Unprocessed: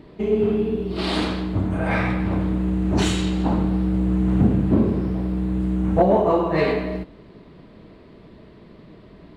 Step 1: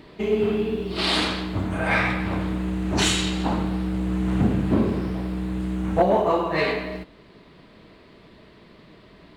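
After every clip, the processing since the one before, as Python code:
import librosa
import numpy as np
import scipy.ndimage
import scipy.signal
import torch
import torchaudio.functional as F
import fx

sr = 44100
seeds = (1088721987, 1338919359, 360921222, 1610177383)

y = fx.tilt_shelf(x, sr, db=-5.5, hz=900.0)
y = fx.rider(y, sr, range_db=10, speed_s=2.0)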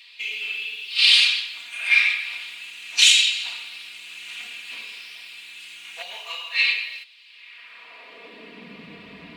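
y = fx.peak_eq(x, sr, hz=2500.0, db=13.5, octaves=0.53)
y = y + 0.71 * np.pad(y, (int(4.2 * sr / 1000.0), 0))[:len(y)]
y = fx.filter_sweep_highpass(y, sr, from_hz=3700.0, to_hz=110.0, start_s=7.25, end_s=8.91, q=1.4)
y = F.gain(torch.from_numpy(y), 2.5).numpy()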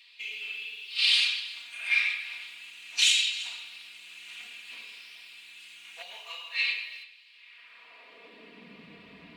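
y = x + 10.0 ** (-20.5 / 20.0) * np.pad(x, (int(346 * sr / 1000.0), 0))[:len(x)]
y = F.gain(torch.from_numpy(y), -8.0).numpy()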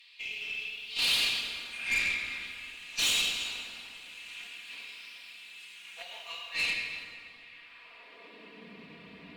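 y = fx.tube_stage(x, sr, drive_db=24.0, bias=0.35)
y = fx.rev_plate(y, sr, seeds[0], rt60_s=3.2, hf_ratio=0.45, predelay_ms=0, drr_db=3.5)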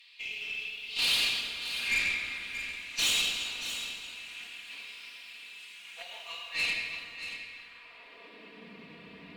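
y = x + 10.0 ** (-10.0 / 20.0) * np.pad(x, (int(632 * sr / 1000.0), 0))[:len(x)]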